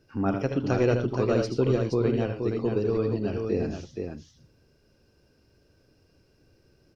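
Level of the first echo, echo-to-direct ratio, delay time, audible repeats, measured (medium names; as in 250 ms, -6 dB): -8.0 dB, -2.5 dB, 76 ms, 3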